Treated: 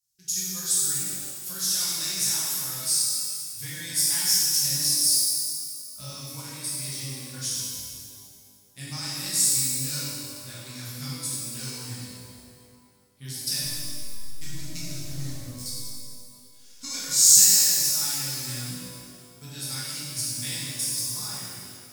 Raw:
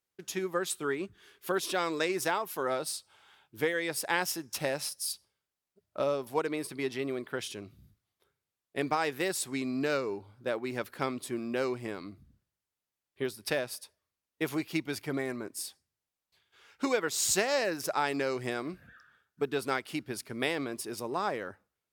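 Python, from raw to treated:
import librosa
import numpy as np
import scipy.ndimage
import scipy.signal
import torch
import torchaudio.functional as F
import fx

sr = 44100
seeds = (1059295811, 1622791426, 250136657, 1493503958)

y = fx.high_shelf(x, sr, hz=11000.0, db=-6.5)
y = fx.backlash(y, sr, play_db=-28.5, at=(13.6, 15.66))
y = fx.curve_eq(y, sr, hz=(140.0, 420.0, 2900.0, 5400.0), db=(0, -29, -8, 12))
y = fx.rev_shimmer(y, sr, seeds[0], rt60_s=2.0, semitones=12, shimmer_db=-8, drr_db=-9.5)
y = F.gain(torch.from_numpy(y), -3.0).numpy()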